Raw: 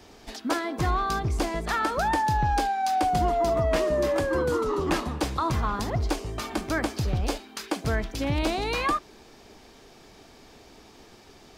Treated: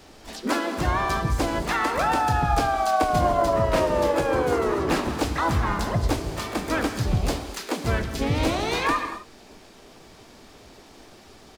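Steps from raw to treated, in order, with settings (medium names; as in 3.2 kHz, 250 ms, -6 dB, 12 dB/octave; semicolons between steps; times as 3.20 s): gated-style reverb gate 280 ms flat, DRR 7.5 dB; harmony voices -3 st -5 dB, +7 st -7 dB, +12 st -15 dB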